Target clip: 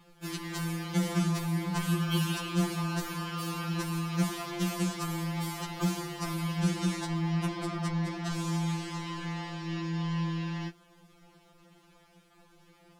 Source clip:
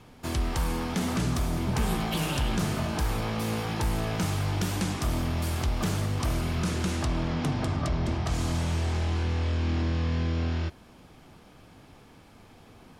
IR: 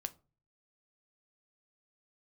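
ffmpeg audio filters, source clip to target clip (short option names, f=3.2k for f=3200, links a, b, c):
-af "aeval=exprs='sgn(val(0))*max(abs(val(0))-0.0015,0)':c=same,acontrast=67,afftfilt=real='re*2.83*eq(mod(b,8),0)':imag='im*2.83*eq(mod(b,8),0)':win_size=2048:overlap=0.75,volume=-6.5dB"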